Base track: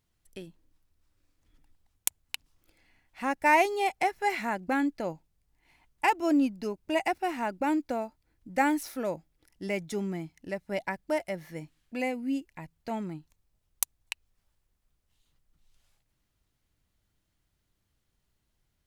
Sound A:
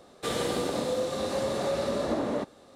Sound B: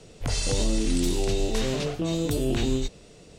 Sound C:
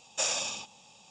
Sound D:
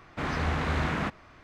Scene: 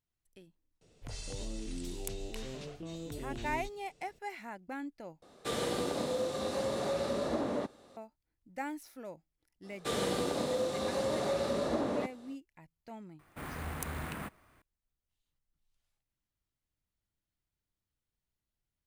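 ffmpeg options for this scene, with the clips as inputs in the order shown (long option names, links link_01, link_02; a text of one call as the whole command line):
ffmpeg -i bed.wav -i cue0.wav -i cue1.wav -i cue2.wav -i cue3.wav -filter_complex "[1:a]asplit=2[link_01][link_02];[0:a]volume=-13.5dB[link_03];[4:a]acrusher=samples=4:mix=1:aa=0.000001[link_04];[link_03]asplit=2[link_05][link_06];[link_05]atrim=end=5.224[link_07];[link_01]atrim=end=2.75,asetpts=PTS-STARTPTS,volume=-4.5dB[link_08];[link_06]atrim=start=7.966[link_09];[2:a]atrim=end=3.38,asetpts=PTS-STARTPTS,volume=-16dB,afade=type=in:duration=0.004:curve=hsin,afade=type=out:start_time=3.376:duration=0.004:curve=hsin,adelay=810[link_10];[link_02]atrim=end=2.75,asetpts=PTS-STARTPTS,volume=-3.5dB,afade=type=in:duration=0.05,afade=type=out:start_time=2.7:duration=0.05,adelay=424242S[link_11];[link_04]atrim=end=1.43,asetpts=PTS-STARTPTS,volume=-11.5dB,afade=type=in:duration=0.004:curve=hsin,afade=type=out:start_time=1.426:duration=0.004:curve=hsin,adelay=13190[link_12];[link_07][link_08]acrossfade=duration=0.004:curve1=hsin:curve2=hsin[link_13];[link_13][link_09]acrossfade=duration=0.004:curve1=hsin:curve2=hsin[link_14];[link_14][link_10][link_11][link_12]amix=inputs=4:normalize=0" out.wav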